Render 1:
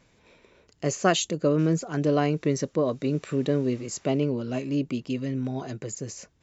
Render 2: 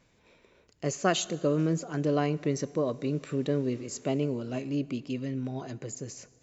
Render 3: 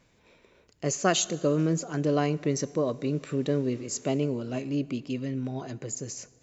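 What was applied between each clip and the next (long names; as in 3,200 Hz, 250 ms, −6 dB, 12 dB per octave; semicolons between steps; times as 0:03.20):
dense smooth reverb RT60 2.1 s, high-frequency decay 0.85×, DRR 18 dB; level −4 dB
dynamic equaliser 6,300 Hz, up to +5 dB, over −51 dBFS, Q 1.3; level +1.5 dB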